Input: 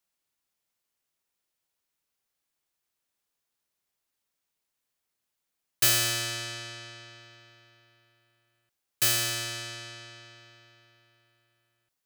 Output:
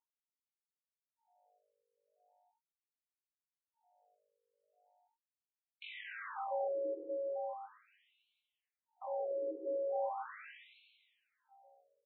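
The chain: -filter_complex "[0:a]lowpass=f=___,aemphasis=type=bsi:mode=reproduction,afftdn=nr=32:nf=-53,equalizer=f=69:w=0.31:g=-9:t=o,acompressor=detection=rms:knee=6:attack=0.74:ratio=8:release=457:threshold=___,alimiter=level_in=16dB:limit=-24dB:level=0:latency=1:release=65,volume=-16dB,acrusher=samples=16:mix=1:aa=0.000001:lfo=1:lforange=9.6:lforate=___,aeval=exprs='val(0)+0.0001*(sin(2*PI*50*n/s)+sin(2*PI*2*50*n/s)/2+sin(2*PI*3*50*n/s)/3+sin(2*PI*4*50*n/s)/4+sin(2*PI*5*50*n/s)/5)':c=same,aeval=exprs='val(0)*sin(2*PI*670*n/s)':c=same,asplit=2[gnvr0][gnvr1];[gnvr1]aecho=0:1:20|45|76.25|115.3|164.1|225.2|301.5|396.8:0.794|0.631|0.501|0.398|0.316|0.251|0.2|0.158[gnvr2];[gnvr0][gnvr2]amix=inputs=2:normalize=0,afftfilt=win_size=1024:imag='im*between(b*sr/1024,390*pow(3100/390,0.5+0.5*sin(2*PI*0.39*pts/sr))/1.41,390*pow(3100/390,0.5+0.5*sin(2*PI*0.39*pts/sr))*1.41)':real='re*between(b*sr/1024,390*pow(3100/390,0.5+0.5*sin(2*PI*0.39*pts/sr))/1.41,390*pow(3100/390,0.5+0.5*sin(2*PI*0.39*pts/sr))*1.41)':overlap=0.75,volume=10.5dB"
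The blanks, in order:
4800, -40dB, 1.5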